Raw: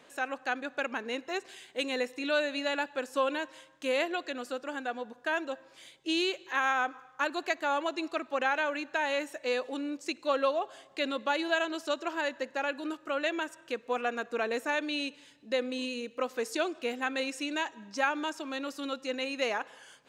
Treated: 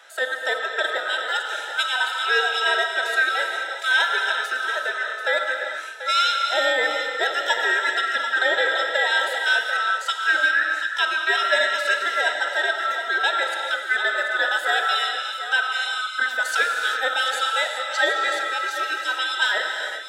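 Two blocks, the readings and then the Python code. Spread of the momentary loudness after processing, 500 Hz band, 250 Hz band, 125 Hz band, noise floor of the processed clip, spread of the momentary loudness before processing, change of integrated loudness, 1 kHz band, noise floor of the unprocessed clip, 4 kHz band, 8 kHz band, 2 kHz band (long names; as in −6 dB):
5 LU, +3.5 dB, −11.0 dB, can't be measured, −31 dBFS, 8 LU, +11.0 dB, +9.5 dB, −58 dBFS, +13.5 dB, +10.5 dB, +15.0 dB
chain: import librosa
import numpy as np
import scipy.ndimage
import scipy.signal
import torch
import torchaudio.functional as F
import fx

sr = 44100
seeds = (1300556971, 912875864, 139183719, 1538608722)

p1 = fx.band_swap(x, sr, width_hz=1000)
p2 = scipy.signal.sosfilt(scipy.signal.butter(4, 480.0, 'highpass', fs=sr, output='sos'), p1)
p3 = p2 + fx.echo_single(p2, sr, ms=737, db=-11.5, dry=0)
p4 = fx.rev_gated(p3, sr, seeds[0], gate_ms=440, shape='flat', drr_db=2.5)
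y = F.gain(torch.from_numpy(p4), 8.5).numpy()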